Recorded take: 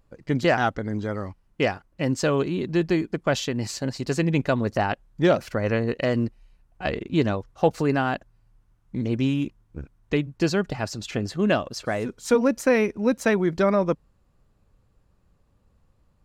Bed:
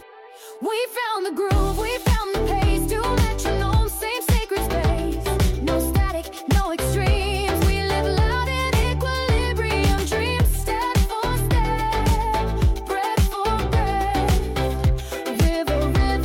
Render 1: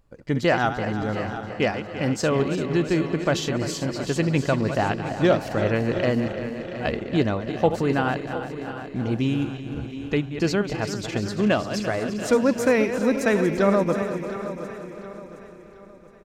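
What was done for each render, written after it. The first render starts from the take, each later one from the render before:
feedback delay that plays each chunk backwards 171 ms, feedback 76%, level −10 dB
repeating echo 717 ms, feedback 40%, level −13 dB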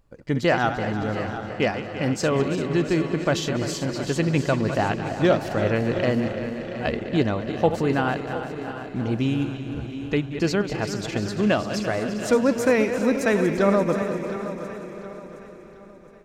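feedback echo with a swinging delay time 201 ms, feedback 75%, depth 92 cents, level −18 dB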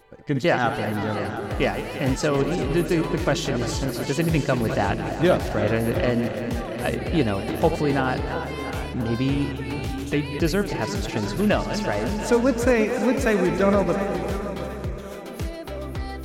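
mix in bed −12 dB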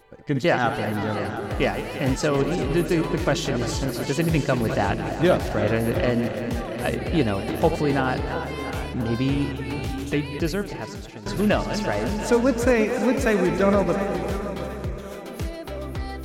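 0:10.08–0:11.26: fade out linear, to −16 dB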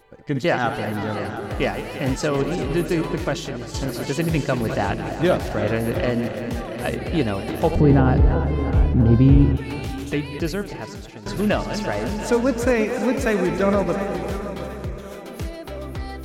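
0:03.09–0:03.74: fade out, to −9.5 dB
0:07.75–0:09.57: spectral tilt −4 dB per octave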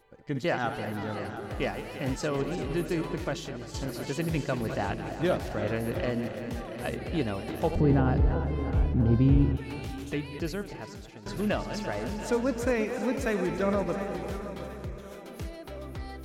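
level −8 dB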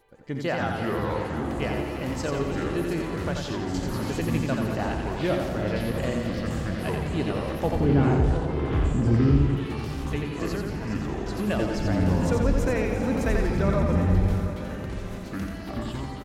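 delay with pitch and tempo change per echo 154 ms, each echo −7 semitones, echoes 2
repeating echo 87 ms, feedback 43%, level −4.5 dB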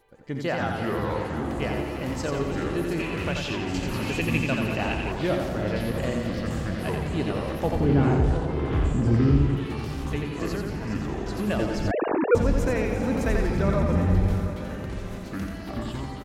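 0:02.99–0:05.12: parametric band 2,600 Hz +14 dB 0.45 octaves
0:11.91–0:12.35: three sine waves on the formant tracks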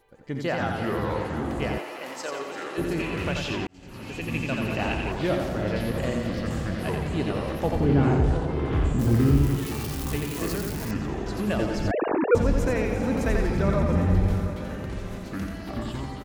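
0:01.78–0:02.78: high-pass filter 550 Hz
0:03.67–0:04.83: fade in
0:08.99–0:10.91: spike at every zero crossing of −25 dBFS

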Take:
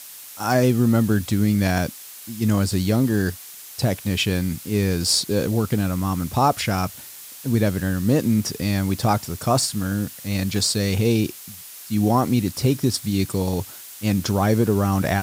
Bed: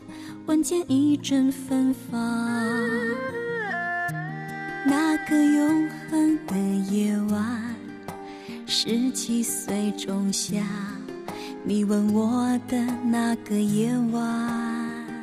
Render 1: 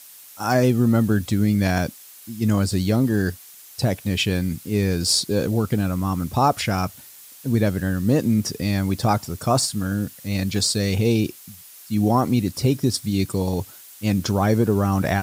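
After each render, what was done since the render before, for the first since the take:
broadband denoise 6 dB, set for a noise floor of −40 dBFS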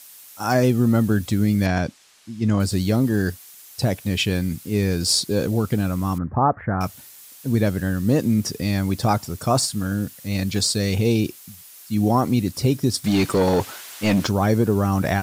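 0:01.66–0:02.60: high-frequency loss of the air 84 metres
0:06.18–0:06.81: Chebyshev low-pass filter 1,800 Hz, order 5
0:13.04–0:14.27: mid-hump overdrive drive 24 dB, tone 1,900 Hz, clips at −8.5 dBFS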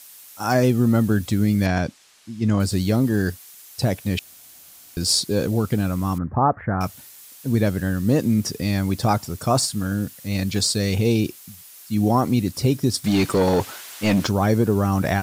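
0:04.19–0:04.97: fill with room tone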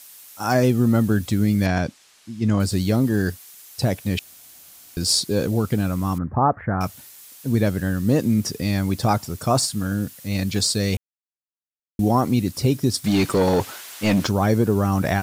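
0:10.97–0:11.99: silence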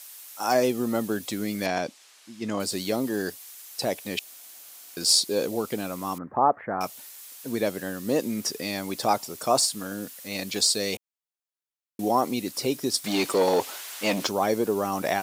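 high-pass filter 390 Hz 12 dB per octave
dynamic equaliser 1,500 Hz, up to −6 dB, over −43 dBFS, Q 2.1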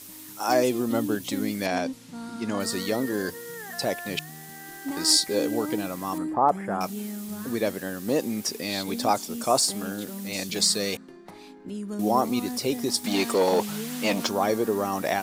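mix in bed −11 dB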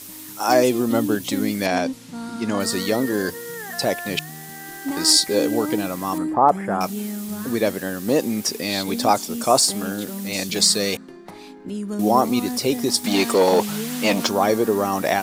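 level +5.5 dB
brickwall limiter −3 dBFS, peak gain reduction 2.5 dB

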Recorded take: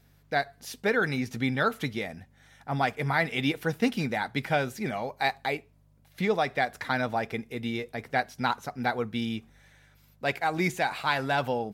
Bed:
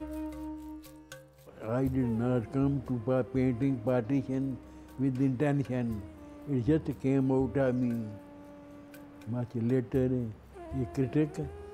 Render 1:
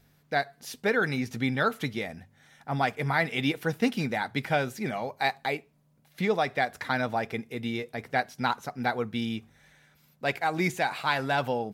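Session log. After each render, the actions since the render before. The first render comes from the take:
hum removal 50 Hz, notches 2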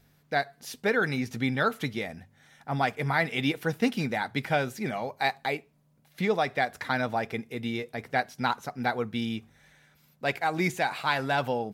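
no processing that can be heard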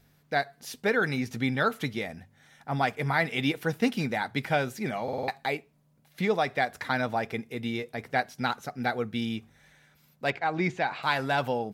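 0:05.03: stutter in place 0.05 s, 5 plays
0:08.41–0:09.21: parametric band 990 Hz −10 dB 0.22 octaves
0:10.30–0:11.03: high-frequency loss of the air 150 metres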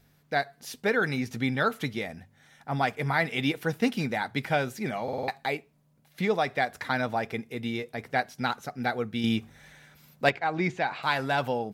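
0:09.24–0:10.29: clip gain +6.5 dB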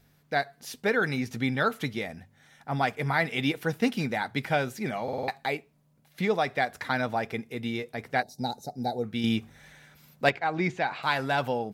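0:08.23–0:09.04: gain on a spectral selection 910–3,600 Hz −21 dB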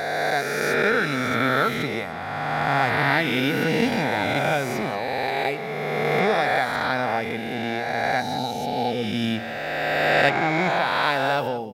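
peak hold with a rise ahead of every peak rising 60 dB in 2.88 s
single-tap delay 177 ms −15.5 dB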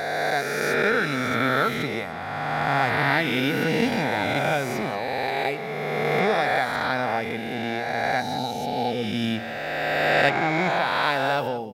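level −1 dB

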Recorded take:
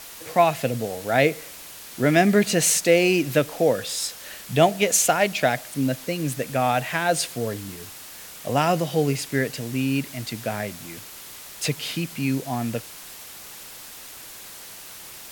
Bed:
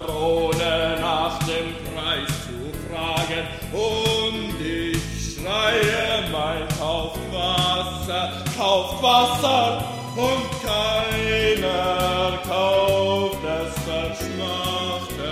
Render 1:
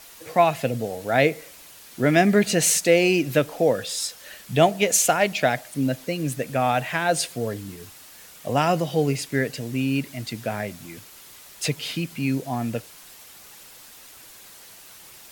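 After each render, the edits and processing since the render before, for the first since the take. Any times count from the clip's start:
broadband denoise 6 dB, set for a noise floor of −41 dBFS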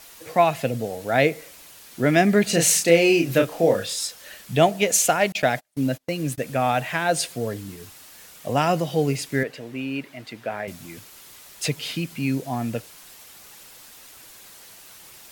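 0:02.50–0:03.94: double-tracking delay 30 ms −4.5 dB
0:05.32–0:06.38: noise gate −34 dBFS, range −33 dB
0:09.43–0:10.68: bass and treble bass −12 dB, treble −13 dB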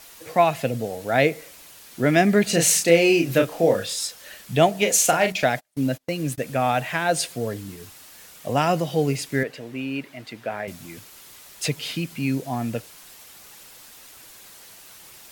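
0:04.73–0:05.45: double-tracking delay 38 ms −7.5 dB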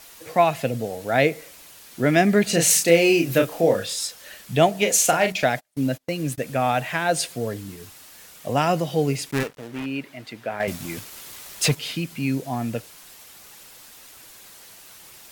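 0:02.70–0:03.61: high-shelf EQ 11,000 Hz +6 dB
0:09.31–0:09.86: gap after every zero crossing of 0.29 ms
0:10.60–0:11.75: leveller curve on the samples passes 2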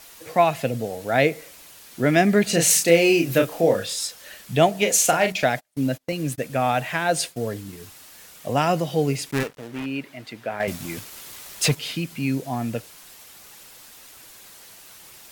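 0:06.12–0:07.73: downward expander −35 dBFS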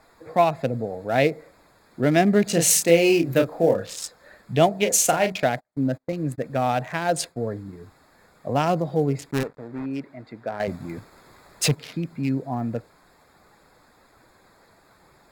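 adaptive Wiener filter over 15 samples
dynamic equaliser 1,700 Hz, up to −3 dB, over −32 dBFS, Q 1.2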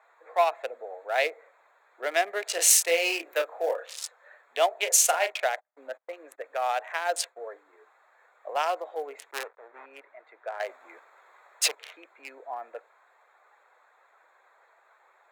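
adaptive Wiener filter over 9 samples
Bessel high-pass filter 830 Hz, order 8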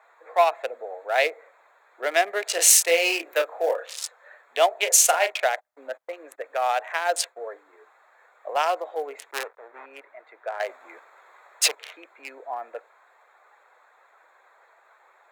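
level +4 dB
brickwall limiter −3 dBFS, peak gain reduction 1 dB

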